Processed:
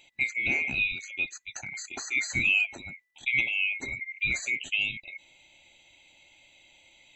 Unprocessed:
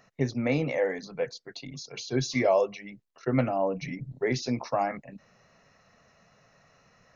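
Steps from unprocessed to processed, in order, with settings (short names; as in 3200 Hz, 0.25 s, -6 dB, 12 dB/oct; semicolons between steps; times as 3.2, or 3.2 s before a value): band-swap scrambler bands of 2000 Hz; in parallel at 0 dB: compressor, threshold -38 dBFS, peak gain reduction 18 dB; on the sum: gain -3 dB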